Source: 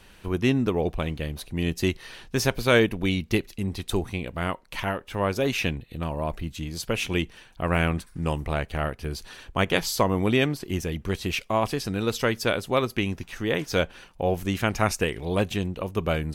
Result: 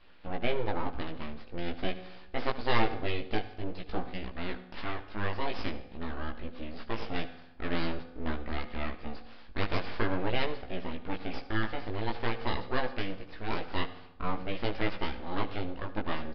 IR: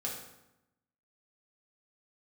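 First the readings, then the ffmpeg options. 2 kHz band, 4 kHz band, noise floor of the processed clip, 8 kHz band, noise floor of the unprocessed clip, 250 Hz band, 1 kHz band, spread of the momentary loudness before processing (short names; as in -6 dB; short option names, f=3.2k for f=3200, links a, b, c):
-8.0 dB, -8.5 dB, -49 dBFS, under -30 dB, -52 dBFS, -9.5 dB, -5.0 dB, 9 LU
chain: -filter_complex "[0:a]aeval=exprs='abs(val(0))':c=same,flanger=delay=16:depth=2.8:speed=0.47,equalizer=f=140:t=o:w=0.36:g=-14.5,aresample=11025,aresample=44100,aemphasis=mode=reproduction:type=50fm,asplit=2[a][b];[1:a]atrim=start_sample=2205,adelay=74[c];[b][c]afir=irnorm=-1:irlink=0,volume=-14.5dB[d];[a][d]amix=inputs=2:normalize=0,volume=-1.5dB"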